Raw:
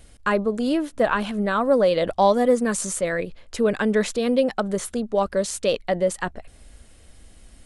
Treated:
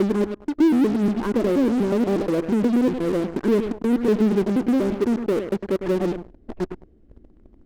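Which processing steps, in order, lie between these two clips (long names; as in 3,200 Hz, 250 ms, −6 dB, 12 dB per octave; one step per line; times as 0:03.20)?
slices reordered back to front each 120 ms, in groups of 4
drawn EQ curve 120 Hz 0 dB, 370 Hz +12 dB, 530 Hz −4 dB, 3,000 Hz −21 dB
on a send: feedback echo with a low-pass in the loop 103 ms, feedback 22%, low-pass 1,500 Hz, level −15 dB
on the sum: treble cut that deepens with the level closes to 550 Hz, closed at −14.5 dBFS
high-frequency loss of the air 140 metres
in parallel at −8.5 dB: fuzz pedal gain 35 dB, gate −39 dBFS
on the sum: level −5 dB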